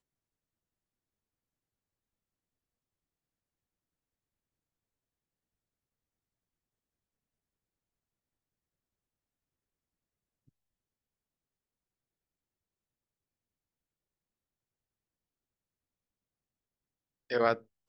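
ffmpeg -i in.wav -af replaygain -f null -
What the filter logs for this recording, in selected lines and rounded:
track_gain = +64.0 dB
track_peak = 0.205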